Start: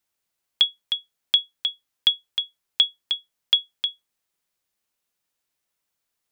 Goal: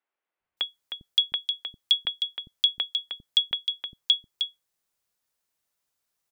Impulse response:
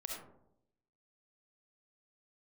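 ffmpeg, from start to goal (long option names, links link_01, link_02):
-filter_complex "[0:a]acrossover=split=270|2700[link_01][link_02][link_03];[link_01]adelay=400[link_04];[link_03]adelay=570[link_05];[link_04][link_02][link_05]amix=inputs=3:normalize=0"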